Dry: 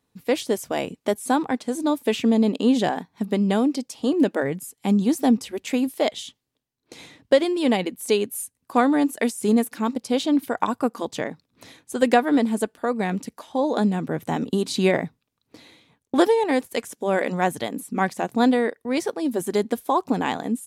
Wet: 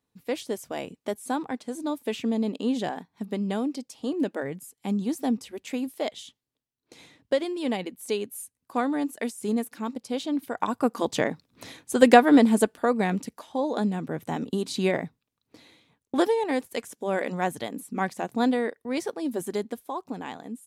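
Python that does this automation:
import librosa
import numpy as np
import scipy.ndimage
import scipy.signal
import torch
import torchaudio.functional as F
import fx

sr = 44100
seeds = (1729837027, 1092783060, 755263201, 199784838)

y = fx.gain(x, sr, db=fx.line((10.44, -7.5), (11.09, 3.0), (12.61, 3.0), (13.68, -5.0), (19.44, -5.0), (19.9, -12.0)))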